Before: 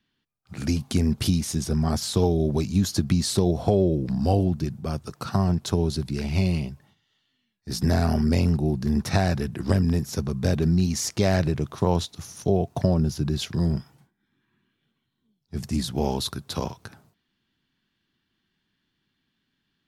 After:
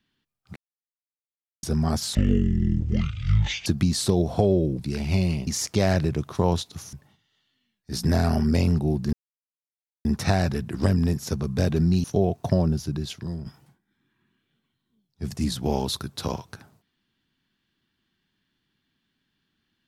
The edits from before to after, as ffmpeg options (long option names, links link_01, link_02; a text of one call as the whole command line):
ffmpeg -i in.wav -filter_complex "[0:a]asplit=11[link_01][link_02][link_03][link_04][link_05][link_06][link_07][link_08][link_09][link_10][link_11];[link_01]atrim=end=0.56,asetpts=PTS-STARTPTS,afade=type=out:start_time=0.556:duration=0.004:curve=hsin[link_12];[link_02]atrim=start=0.56:end=1.63,asetpts=PTS-STARTPTS,volume=0[link_13];[link_03]atrim=start=1.63:end=2.154,asetpts=PTS-STARTPTS,afade=type=in:duration=0.004:curve=hsin[link_14];[link_04]atrim=start=2.15:end=2.95,asetpts=PTS-STARTPTS,asetrate=23373,aresample=44100,atrim=end_sample=66566,asetpts=PTS-STARTPTS[link_15];[link_05]atrim=start=2.946:end=4.082[link_16];[link_06]atrim=start=6.028:end=6.712[link_17];[link_07]atrim=start=10.898:end=12.362[link_18];[link_08]atrim=start=6.708:end=8.91,asetpts=PTS-STARTPTS,afade=type=out:start_time=2.198:duration=0.004:curve=hsin,apad=pad_dur=0.92[link_19];[link_09]atrim=start=8.91:end=10.902,asetpts=PTS-STARTPTS,afade=type=in:duration=0.004:curve=hsin[link_20];[link_10]atrim=start=12.358:end=13.78,asetpts=PTS-STARTPTS,afade=type=out:start_time=0.562:duration=0.86:silence=0.237137[link_21];[link_11]atrim=start=13.78,asetpts=PTS-STARTPTS,afade=type=in:duration=0.004:curve=hsin:silence=0.237137[link_22];[link_12][link_13][link_14]concat=n=3:v=0:a=1[link_23];[link_23][link_15]acrossfade=duration=0.004:curve1=hsin:curve2=hsin[link_24];[link_24][link_16]acrossfade=duration=0.004:curve1=hsin:curve2=hsin[link_25];[link_25][link_17]acrossfade=duration=0.004:curve1=hsin:curve2=hsin[link_26];[link_26][link_18]acrossfade=duration=0.004:curve1=hsin:curve2=hsin[link_27];[link_19][link_20]concat=n=2:v=0:a=1[link_28];[link_27][link_28]acrossfade=duration=0.004:curve1=hsin:curve2=hsin[link_29];[link_21][link_22]concat=n=2:v=0:a=1[link_30];[link_29][link_30]acrossfade=duration=0.004:curve1=hsin:curve2=hsin" out.wav